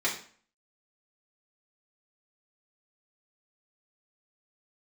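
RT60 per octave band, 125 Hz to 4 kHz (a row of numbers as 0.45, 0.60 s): 0.45, 0.50, 0.45, 0.45, 0.45, 0.40 s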